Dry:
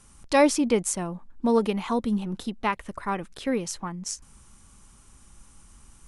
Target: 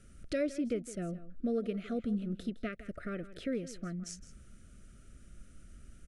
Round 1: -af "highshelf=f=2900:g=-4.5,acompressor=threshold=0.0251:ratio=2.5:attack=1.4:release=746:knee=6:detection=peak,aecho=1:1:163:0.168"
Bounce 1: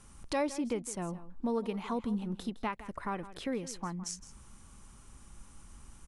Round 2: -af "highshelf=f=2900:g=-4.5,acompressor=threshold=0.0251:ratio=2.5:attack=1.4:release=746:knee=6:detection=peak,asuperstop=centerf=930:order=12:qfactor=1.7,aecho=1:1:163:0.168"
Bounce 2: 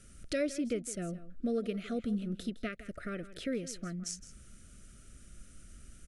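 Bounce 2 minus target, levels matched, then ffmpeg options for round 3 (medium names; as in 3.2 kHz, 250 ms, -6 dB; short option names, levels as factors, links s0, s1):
8 kHz band +6.5 dB
-af "highshelf=f=2900:g=-13.5,acompressor=threshold=0.0251:ratio=2.5:attack=1.4:release=746:knee=6:detection=peak,asuperstop=centerf=930:order=12:qfactor=1.7,aecho=1:1:163:0.168"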